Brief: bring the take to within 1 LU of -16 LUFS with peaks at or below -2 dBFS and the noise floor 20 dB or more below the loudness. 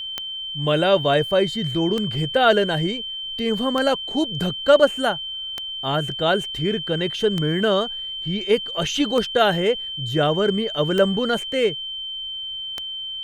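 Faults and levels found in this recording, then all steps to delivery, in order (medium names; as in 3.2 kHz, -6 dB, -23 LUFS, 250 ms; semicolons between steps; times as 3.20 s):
clicks found 8; steady tone 3.1 kHz; tone level -28 dBFS; loudness -21.5 LUFS; peak level -2.5 dBFS; loudness target -16.0 LUFS
-> de-click; band-stop 3.1 kHz, Q 30; trim +5.5 dB; peak limiter -2 dBFS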